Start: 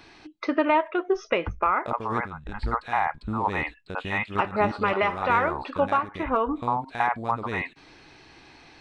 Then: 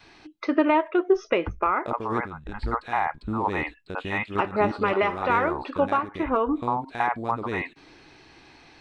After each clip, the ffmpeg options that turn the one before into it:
-af "adynamicequalizer=threshold=0.00891:dfrequency=340:dqfactor=1.6:tfrequency=340:tqfactor=1.6:attack=5:release=100:ratio=0.375:range=3:mode=boostabove:tftype=bell,volume=-1dB"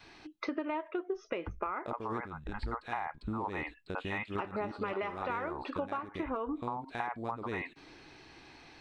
-af "acompressor=threshold=-30dB:ratio=6,volume=-3dB"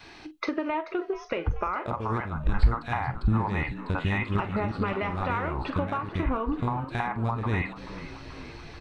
-filter_complex "[0:a]asplit=2[a][b];[b]adelay=45,volume=-13.5dB[c];[a][c]amix=inputs=2:normalize=0,asubboost=boost=6:cutoff=150,asplit=7[d][e][f][g][h][i][j];[e]adelay=434,afreqshift=78,volume=-15.5dB[k];[f]adelay=868,afreqshift=156,volume=-19.8dB[l];[g]adelay=1302,afreqshift=234,volume=-24.1dB[m];[h]adelay=1736,afreqshift=312,volume=-28.4dB[n];[i]adelay=2170,afreqshift=390,volume=-32.7dB[o];[j]adelay=2604,afreqshift=468,volume=-37dB[p];[d][k][l][m][n][o][p]amix=inputs=7:normalize=0,volume=7dB"

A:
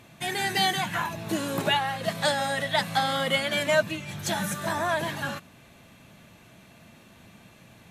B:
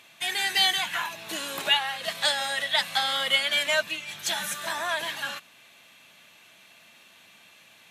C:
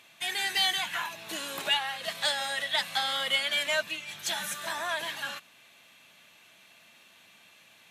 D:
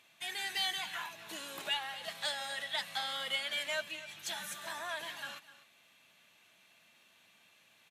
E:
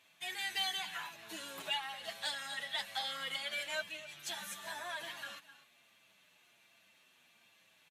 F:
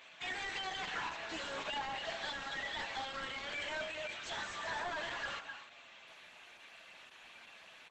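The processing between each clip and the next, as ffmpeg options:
-af "highpass=f=1.4k:p=1,equalizer=f=3.1k:w=1.3:g=5,volume=1.5dB"
-af "asoftclip=type=tanh:threshold=-13dB,volume=-3dB"
-af "aecho=1:1:253:0.168,volume=-8dB"
-filter_complex "[0:a]asplit=2[a][b];[b]adelay=7.4,afreqshift=-1.3[c];[a][c]amix=inputs=2:normalize=1,volume=1dB"
-filter_complex "[0:a]bandreject=f=48.24:t=h:w=4,bandreject=f=96.48:t=h:w=4,bandreject=f=144.72:t=h:w=4,bandreject=f=192.96:t=h:w=4,bandreject=f=241.2:t=h:w=4,bandreject=f=289.44:t=h:w=4,bandreject=f=337.68:t=h:w=4,bandreject=f=385.92:t=h:w=4,bandreject=f=434.16:t=h:w=4,bandreject=f=482.4:t=h:w=4,bandreject=f=530.64:t=h:w=4,bandreject=f=578.88:t=h:w=4,bandreject=f=627.12:t=h:w=4,bandreject=f=675.36:t=h:w=4,bandreject=f=723.6:t=h:w=4,bandreject=f=771.84:t=h:w=4,bandreject=f=820.08:t=h:w=4,bandreject=f=868.32:t=h:w=4,bandreject=f=916.56:t=h:w=4,bandreject=f=964.8:t=h:w=4,bandreject=f=1.01304k:t=h:w=4,bandreject=f=1.06128k:t=h:w=4,bandreject=f=1.10952k:t=h:w=4,bandreject=f=1.15776k:t=h:w=4,bandreject=f=1.206k:t=h:w=4,bandreject=f=1.25424k:t=h:w=4,bandreject=f=1.30248k:t=h:w=4,bandreject=f=1.35072k:t=h:w=4,bandreject=f=1.39896k:t=h:w=4,bandreject=f=1.4472k:t=h:w=4,asplit=2[a][b];[b]highpass=f=720:p=1,volume=28dB,asoftclip=type=tanh:threshold=-24dB[c];[a][c]amix=inputs=2:normalize=0,lowpass=f=1.4k:p=1,volume=-6dB,volume=-3dB" -ar 48000 -c:a libopus -b:a 12k

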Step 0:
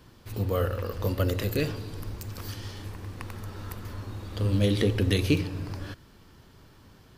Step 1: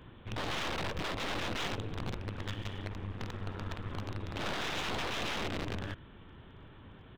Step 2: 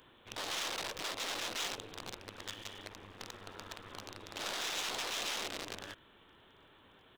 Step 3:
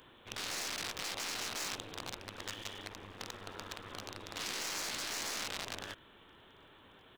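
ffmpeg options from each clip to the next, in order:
-af "aresample=8000,aeval=exprs='(mod(28.2*val(0)+1,2)-1)/28.2':c=same,aresample=44100,acontrast=78,aeval=exprs='clip(val(0),-1,0.0112)':c=same,volume=-5.5dB"
-af "bass=f=250:g=-15,treble=f=4k:g=13,volume=-4dB"
-af "afftfilt=real='re*lt(hypot(re,im),0.0224)':imag='im*lt(hypot(re,im),0.0224)':win_size=1024:overlap=0.75,volume=2.5dB"

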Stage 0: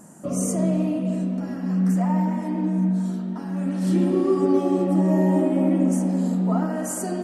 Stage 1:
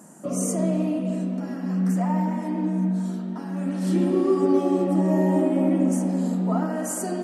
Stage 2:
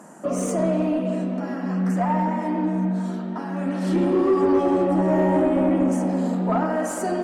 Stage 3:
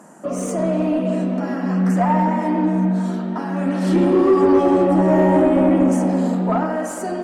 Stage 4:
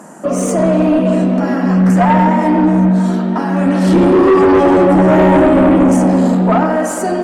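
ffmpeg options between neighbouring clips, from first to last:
-af "highpass=170"
-filter_complex "[0:a]asplit=2[a][b];[b]highpass=f=720:p=1,volume=16dB,asoftclip=type=tanh:threshold=-10dB[c];[a][c]amix=inputs=2:normalize=0,lowpass=f=1.6k:p=1,volume=-6dB"
-af "dynaudnorm=f=100:g=17:m=5dB"
-af "aeval=exprs='0.531*sin(PI/2*1.78*val(0)/0.531)':c=same"

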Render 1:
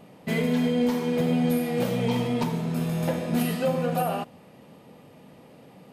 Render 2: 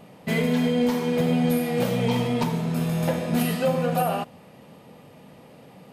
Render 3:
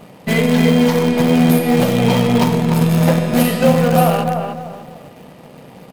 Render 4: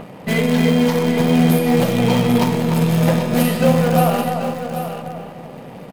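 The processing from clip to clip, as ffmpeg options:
-af "equalizer=f=310:w=1.5:g=-3,volume=3dB"
-filter_complex "[0:a]asplit=2[a][b];[b]adelay=297,lowpass=f=1.8k:p=1,volume=-4dB,asplit=2[c][d];[d]adelay=297,lowpass=f=1.8k:p=1,volume=0.34,asplit=2[e][f];[f]adelay=297,lowpass=f=1.8k:p=1,volume=0.34,asplit=2[g][h];[h]adelay=297,lowpass=f=1.8k:p=1,volume=0.34[i];[a][c][e][g][i]amix=inputs=5:normalize=0,asplit=2[j][k];[k]acrusher=bits=4:dc=4:mix=0:aa=0.000001,volume=-11dB[l];[j][l]amix=inputs=2:normalize=0,volume=6.5dB"
-filter_complex "[0:a]acrossover=split=2800[a][b];[a]acompressor=mode=upward:threshold=-25dB:ratio=2.5[c];[c][b]amix=inputs=2:normalize=0,aecho=1:1:785:0.335,volume=-2.5dB"

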